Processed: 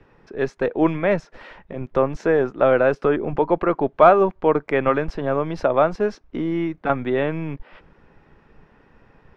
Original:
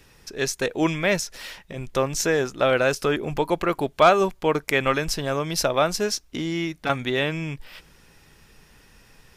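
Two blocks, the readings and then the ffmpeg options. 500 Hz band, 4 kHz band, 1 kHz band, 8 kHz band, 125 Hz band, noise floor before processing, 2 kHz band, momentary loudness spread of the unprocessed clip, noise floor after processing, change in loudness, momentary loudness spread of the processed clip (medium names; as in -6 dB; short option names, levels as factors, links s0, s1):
+4.5 dB, under -10 dB, +3.0 dB, under -20 dB, +1.0 dB, -55 dBFS, -2.5 dB, 11 LU, -57 dBFS, +3.0 dB, 11 LU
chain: -filter_complex "[0:a]lowpass=1300,acrossover=split=190[s0][s1];[s0]aeval=exprs='max(val(0),0)':c=same[s2];[s2][s1]amix=inputs=2:normalize=0,volume=1.68"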